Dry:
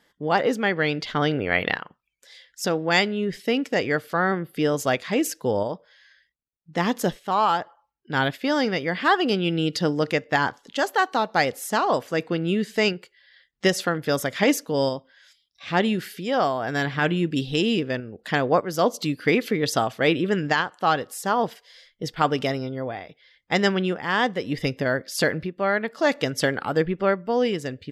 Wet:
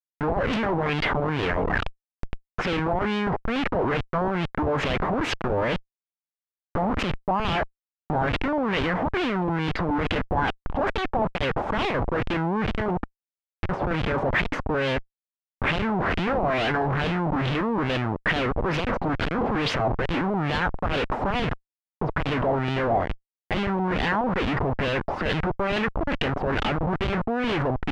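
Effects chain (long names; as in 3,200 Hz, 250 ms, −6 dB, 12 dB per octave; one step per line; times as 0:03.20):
compressor whose output falls as the input rises −26 dBFS, ratio −0.5
comparator with hysteresis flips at −32 dBFS
auto-filter low-pass sine 2.3 Hz 790–3,200 Hz
level +4 dB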